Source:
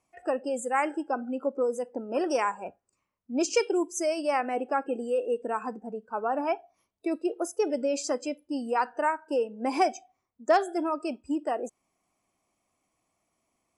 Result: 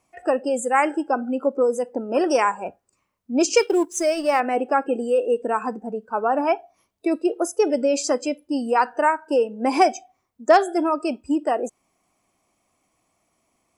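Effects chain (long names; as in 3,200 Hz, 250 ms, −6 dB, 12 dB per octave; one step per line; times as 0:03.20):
0:03.58–0:04.40: mu-law and A-law mismatch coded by A
level +7.5 dB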